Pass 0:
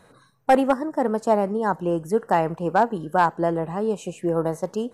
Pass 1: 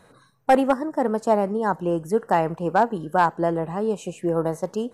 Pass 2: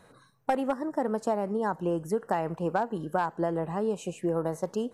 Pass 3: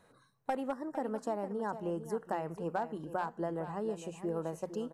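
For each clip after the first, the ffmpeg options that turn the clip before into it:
-af anull
-af "acompressor=threshold=0.1:ratio=10,volume=0.708"
-af "bandreject=f=60:t=h:w=6,bandreject=f=120:t=h:w=6,bandreject=f=180:t=h:w=6,aecho=1:1:457:0.266,volume=0.422"

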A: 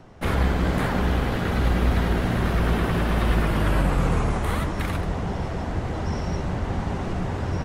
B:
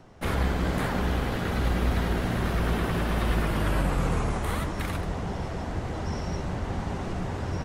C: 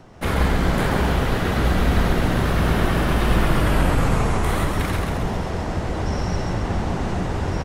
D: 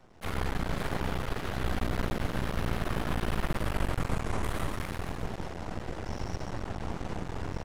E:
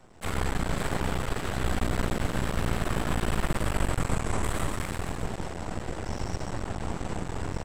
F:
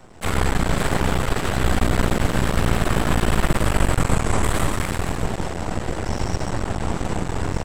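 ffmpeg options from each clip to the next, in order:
-af "bass=f=250:g=-1,treble=f=4000:g=3,volume=0.668"
-filter_complex "[0:a]asplit=9[s0][s1][s2][s3][s4][s5][s6][s7][s8];[s1]adelay=134,afreqshift=-37,volume=0.631[s9];[s2]adelay=268,afreqshift=-74,volume=0.359[s10];[s3]adelay=402,afreqshift=-111,volume=0.204[s11];[s4]adelay=536,afreqshift=-148,volume=0.117[s12];[s5]adelay=670,afreqshift=-185,volume=0.0668[s13];[s6]adelay=804,afreqshift=-222,volume=0.038[s14];[s7]adelay=938,afreqshift=-259,volume=0.0216[s15];[s8]adelay=1072,afreqshift=-296,volume=0.0123[s16];[s0][s9][s10][s11][s12][s13][s14][s15][s16]amix=inputs=9:normalize=0,volume=1.88"
-af "aeval=exprs='max(val(0),0)':c=same,volume=0.376"
-af "equalizer=f=7900:w=5.2:g=13,volume=1.41"
-af "volume=2.66" -ar 48000 -c:a aac -b:a 96k

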